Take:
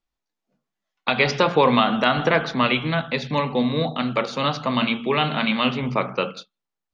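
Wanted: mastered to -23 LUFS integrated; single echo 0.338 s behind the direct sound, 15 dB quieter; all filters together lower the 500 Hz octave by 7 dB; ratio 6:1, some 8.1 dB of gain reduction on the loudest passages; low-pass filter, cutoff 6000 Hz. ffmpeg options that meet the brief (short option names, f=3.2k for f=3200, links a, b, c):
-af "lowpass=6k,equalizer=f=500:t=o:g=-8.5,acompressor=threshold=-24dB:ratio=6,aecho=1:1:338:0.178,volume=5.5dB"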